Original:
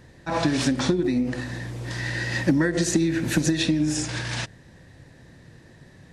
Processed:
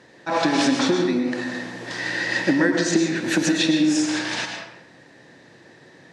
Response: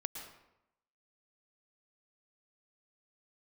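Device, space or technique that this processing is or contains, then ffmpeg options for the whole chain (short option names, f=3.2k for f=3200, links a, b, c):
supermarket ceiling speaker: -filter_complex "[0:a]highpass=290,lowpass=6.9k[a];[1:a]atrim=start_sample=2205[b];[a][b]afir=irnorm=-1:irlink=0,asettb=1/sr,asplit=3[c][d][e];[c]atrim=end=2.744[f];[d]atrim=start=2.74:end=3.16,asetpts=PTS-STARTPTS,afade=t=in:d=0.004:c=qsin,afade=t=out:st=0.416:d=0.004:c=qsin,lowpass=7.1k[g];[e]atrim=start=3.156[h];[f][g]acrossfade=d=0.004:c1=hsin:c2=qsin[i];[i][h]acrossfade=d=0.004:c1=qsin:c2=hsin,volume=6dB"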